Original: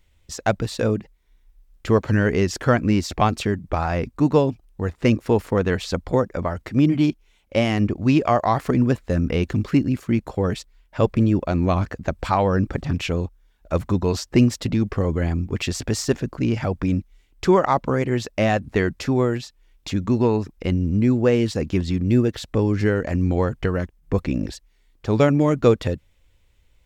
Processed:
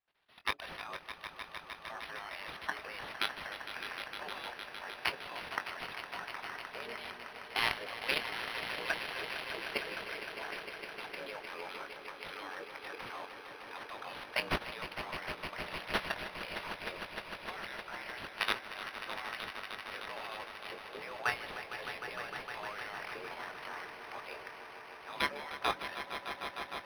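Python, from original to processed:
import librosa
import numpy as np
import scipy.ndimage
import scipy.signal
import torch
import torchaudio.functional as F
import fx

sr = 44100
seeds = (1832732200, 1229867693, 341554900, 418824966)

y = scipy.signal.sosfilt(scipy.signal.butter(4, 89.0, 'highpass', fs=sr, output='sos'), x)
y = fx.hum_notches(y, sr, base_hz=60, count=7)
y = fx.spec_gate(y, sr, threshold_db=-20, keep='weak')
y = fx.riaa(y, sr, side='recording')
y = fx.env_lowpass(y, sr, base_hz=2600.0, full_db=-20.0)
y = fx.dynamic_eq(y, sr, hz=2600.0, q=3.3, threshold_db=-41.0, ratio=4.0, max_db=-5)
y = fx.level_steps(y, sr, step_db=16)
y = fx.doubler(y, sr, ms=21.0, db=-9.5)
y = fx.echo_swell(y, sr, ms=153, loudest=5, wet_db=-11.5)
y = np.interp(np.arange(len(y)), np.arange(len(y))[::6], y[::6])
y = y * 10.0 ** (3.5 / 20.0)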